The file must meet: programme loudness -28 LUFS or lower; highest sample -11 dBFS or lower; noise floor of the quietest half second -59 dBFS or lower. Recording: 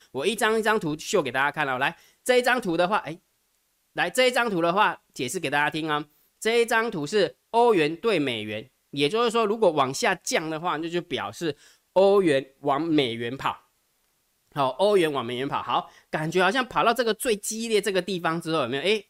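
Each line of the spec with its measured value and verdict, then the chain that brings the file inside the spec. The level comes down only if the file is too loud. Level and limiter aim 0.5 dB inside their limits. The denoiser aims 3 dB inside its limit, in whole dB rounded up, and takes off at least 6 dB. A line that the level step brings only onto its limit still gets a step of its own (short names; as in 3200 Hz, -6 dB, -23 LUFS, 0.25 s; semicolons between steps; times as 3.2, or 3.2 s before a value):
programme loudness -24.5 LUFS: fail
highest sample -9.0 dBFS: fail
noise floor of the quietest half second -70 dBFS: OK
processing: gain -4 dB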